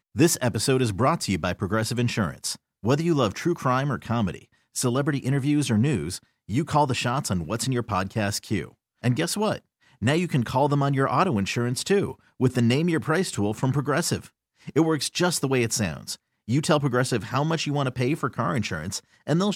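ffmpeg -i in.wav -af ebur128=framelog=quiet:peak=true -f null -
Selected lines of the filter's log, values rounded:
Integrated loudness:
  I:         -24.8 LUFS
  Threshold: -35.0 LUFS
Loudness range:
  LRA:         2.2 LU
  Threshold: -45.0 LUFS
  LRA low:   -26.0 LUFS
  LRA high:  -23.7 LUFS
True peak:
  Peak:       -7.3 dBFS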